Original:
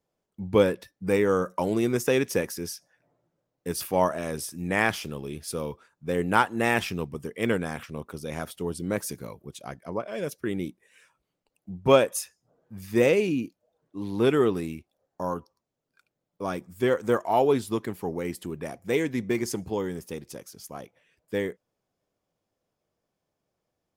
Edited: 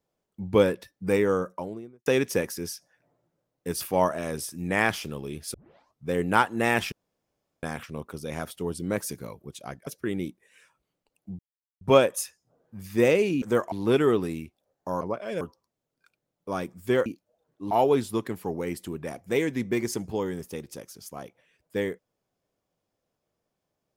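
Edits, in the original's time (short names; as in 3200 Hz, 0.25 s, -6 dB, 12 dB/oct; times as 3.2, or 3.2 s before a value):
1.13–2.06 studio fade out
5.54 tape start 0.53 s
6.92–7.63 room tone
9.87–10.27 move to 15.34
11.79 insert silence 0.42 s
13.4–14.05 swap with 16.99–17.29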